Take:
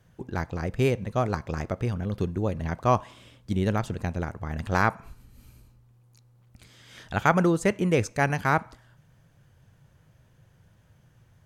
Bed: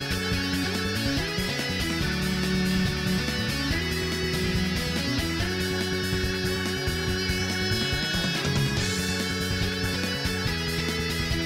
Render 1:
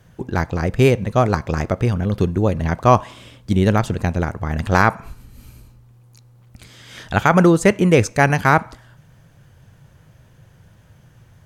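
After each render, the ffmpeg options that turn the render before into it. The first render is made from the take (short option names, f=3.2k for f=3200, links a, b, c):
-af "alimiter=level_in=9.5dB:limit=-1dB:release=50:level=0:latency=1"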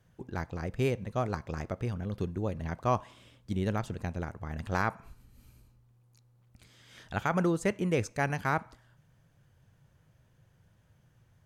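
-af "volume=-15dB"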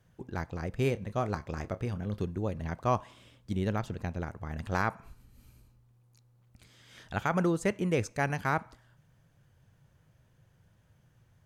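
-filter_complex "[0:a]asettb=1/sr,asplit=3[a][b][c];[a]atrim=end=0.814[d];[b]atrim=start=0.81:end=2.23,asetpts=PTS-STARTPTS,afade=t=in:d=0.004:c=qsin,afade=t=out:st=1.416:d=0.004:c=qsin,asplit=2[e][f];[f]adelay=29,volume=-13dB[g];[e][g]amix=inputs=2:normalize=0,atrim=end_sample=62622[h];[c]atrim=start=2.226[i];[d][h]acrossfade=d=0.004:c1=hsin:c2=qsin[j];[j][i]acrossfade=d=0.004:c1=qsin:c2=hsin,asettb=1/sr,asplit=3[k][l][m];[k]atrim=end=3.654[n];[l]atrim=start=3.65:end=4.26,asetpts=PTS-STARTPTS,afade=t=in:d=0.004:c=qsin,afade=t=out:st=0.606:d=0.004:c=qsin,equalizer=f=9k:w=1.5:g=-5.5[o];[m]atrim=start=4.256[p];[n][o]acrossfade=d=0.004:c1=hsin:c2=qsin[q];[q][p]acrossfade=d=0.004:c1=qsin:c2=hsin"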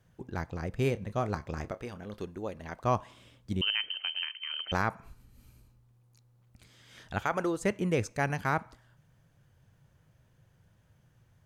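-filter_complex "[0:a]asettb=1/sr,asplit=3[a][b][c];[a]atrim=end=1.714[d];[b]atrim=start=1.71:end=2.84,asetpts=PTS-STARTPTS,afade=t=in:d=0.004:c=qsin,afade=t=out:st=1.126:d=0.004:c=qsin,equalizer=f=110:w=0.66:g=-13[e];[c]atrim=start=2.836[f];[d][e]acrossfade=d=0.004:c1=hsin:c2=qsin[g];[g][f]acrossfade=d=0.004:c1=qsin:c2=hsin,asettb=1/sr,asplit=3[h][i][j];[h]atrim=end=3.614[k];[i]atrim=start=3.61:end=4.72,asetpts=PTS-STARTPTS,afade=t=in:d=0.004:c=qsin,afade=t=out:st=1.106:d=0.004:c=qsin,lowpass=f=2.7k:t=q:w=0.5098,lowpass=f=2.7k:t=q:w=0.6013,lowpass=f=2.7k:t=q:w=0.9,lowpass=f=2.7k:t=q:w=2.563,afreqshift=-3200[l];[j]atrim=start=4.716[m];[k][l]acrossfade=d=0.004:c1=hsin:c2=qsin[n];[n][m]acrossfade=d=0.004:c1=qsin:c2=hsin,asettb=1/sr,asplit=3[o][p][q];[o]atrim=end=7.184[r];[p]atrim=start=7.18:end=7.61,asetpts=PTS-STARTPTS,afade=t=in:d=0.004:c=qsin,afade=t=out:st=0.426:d=0.004:c=qsin,equalizer=f=180:t=o:w=0.8:g=-11.5[s];[q]atrim=start=7.606[t];[r][s]acrossfade=d=0.004:c1=hsin:c2=qsin[u];[u][t]acrossfade=d=0.004:c1=qsin:c2=hsin"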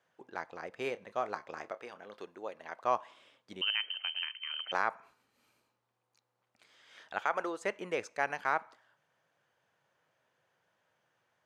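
-af "highpass=570,aemphasis=mode=reproduction:type=50fm"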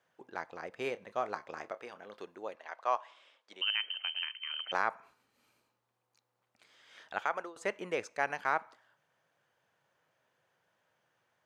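-filter_complex "[0:a]asettb=1/sr,asplit=3[a][b][c];[a]atrim=end=2.554[d];[b]atrim=start=2.55:end=3.82,asetpts=PTS-STARTPTS,afade=t=in:d=0.004:c=qsin,afade=t=out:st=1.266:d=0.004:c=qsin,highpass=560,lowpass=7.3k[e];[c]atrim=start=3.816[f];[d][e]acrossfade=d=0.004:c1=hsin:c2=qsin[g];[g][f]acrossfade=d=0.004:c1=qsin:c2=hsin,asplit=2[h][i];[h]atrim=end=7.56,asetpts=PTS-STARTPTS,afade=t=out:st=7.13:d=0.43:c=qsin:silence=0.0944061[j];[i]atrim=start=7.56,asetpts=PTS-STARTPTS,afade=t=in:d=0.004:c=hsin:silence=0.0944061[k];[j][k]concat=n=2:v=0:a=1"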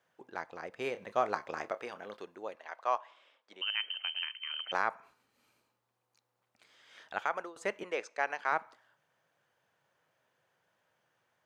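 -filter_complex "[0:a]asettb=1/sr,asplit=3[a][b][c];[a]atrim=end=2.984[d];[b]atrim=start=2.98:end=3.77,asetpts=PTS-STARTPTS,afade=t=in:d=0.004:c=qsin,afade=t=out:st=0.786:d=0.004:c=qsin,highshelf=f=3.5k:g=-7[e];[c]atrim=start=3.766[f];[d][e]acrossfade=d=0.004:c1=hsin:c2=qsin[g];[g][f]acrossfade=d=0.004:c1=qsin:c2=hsin,asettb=1/sr,asplit=3[h][i][j];[h]atrim=end=7.834[k];[i]atrim=start=7.83:end=8.52,asetpts=PTS-STARTPTS,afade=t=in:d=0.004:c=qsin,afade=t=out:st=0.686:d=0.004:c=qsin,highpass=360,lowpass=7.1k[l];[j]atrim=start=8.516[m];[k][l]acrossfade=d=0.004:c1=hsin:c2=qsin[n];[n][m]acrossfade=d=0.004:c1=qsin:c2=hsin,asplit=3[o][p][q];[o]atrim=end=0.952[r];[p]atrim=start=0.948:end=2.172,asetpts=PTS-STARTPTS,volume=4.5dB[s];[q]atrim=start=2.168[t];[r][s]acrossfade=d=0.004:c1=hsin:c2=hsin[u];[u][t]acrossfade=d=0.004:c1=hsin:c2=hsin"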